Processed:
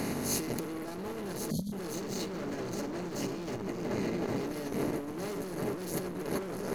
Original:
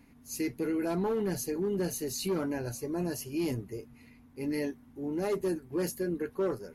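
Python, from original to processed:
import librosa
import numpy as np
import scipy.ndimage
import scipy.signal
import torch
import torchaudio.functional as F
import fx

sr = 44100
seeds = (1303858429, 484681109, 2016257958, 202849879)

y = fx.bin_compress(x, sr, power=0.4)
y = fx.echo_wet_lowpass(y, sr, ms=372, feedback_pct=74, hz=2200.0, wet_db=-7)
y = fx.cheby_harmonics(y, sr, harmonics=(8,), levels_db=(-25,), full_scale_db=-13.0)
y = fx.spec_erase(y, sr, start_s=1.5, length_s=0.22, low_hz=260.0, high_hz=3100.0)
y = fx.peak_eq(y, sr, hz=11000.0, db=-14.0, octaves=0.43, at=(1.94, 4.47))
y = np.clip(y, -10.0 ** (-27.0 / 20.0), 10.0 ** (-27.0 / 20.0))
y = fx.peak_eq(y, sr, hz=200.0, db=4.5, octaves=0.34)
y = fx.over_compress(y, sr, threshold_db=-32.0, ratio=-0.5)
y = fx.transformer_sat(y, sr, knee_hz=250.0)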